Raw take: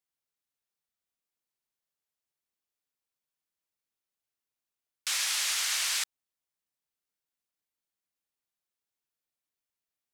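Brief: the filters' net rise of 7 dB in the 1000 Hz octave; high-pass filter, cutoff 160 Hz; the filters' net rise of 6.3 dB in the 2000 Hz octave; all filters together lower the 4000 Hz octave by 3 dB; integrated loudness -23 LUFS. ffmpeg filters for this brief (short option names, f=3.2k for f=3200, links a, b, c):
-af "highpass=160,equalizer=f=1k:t=o:g=6.5,equalizer=f=2k:t=o:g=8,equalizer=f=4k:t=o:g=-7,volume=4.5dB"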